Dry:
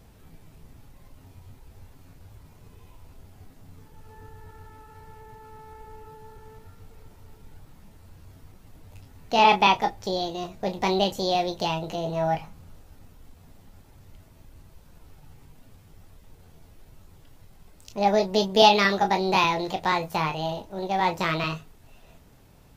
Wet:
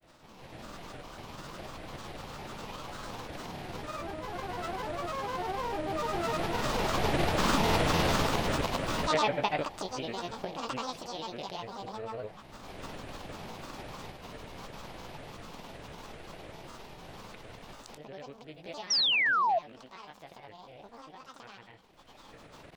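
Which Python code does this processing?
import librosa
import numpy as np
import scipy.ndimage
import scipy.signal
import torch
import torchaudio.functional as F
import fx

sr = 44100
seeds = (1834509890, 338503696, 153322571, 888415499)

y = fx.bin_compress(x, sr, power=0.6)
y = fx.recorder_agc(y, sr, target_db=-11.0, rise_db_per_s=32.0, max_gain_db=30)
y = fx.doppler_pass(y, sr, speed_mps=11, closest_m=8.6, pass_at_s=7.71)
y = fx.granulator(y, sr, seeds[0], grain_ms=100.0, per_s=20.0, spray_ms=100.0, spread_st=7)
y = fx.dmg_crackle(y, sr, seeds[1], per_s=62.0, level_db=-55.0)
y = fx.spec_paint(y, sr, seeds[2], shape='fall', start_s=18.9, length_s=0.69, low_hz=630.0, high_hz=5900.0, level_db=-22.0)
y = F.gain(torch.from_numpy(y), -4.0).numpy()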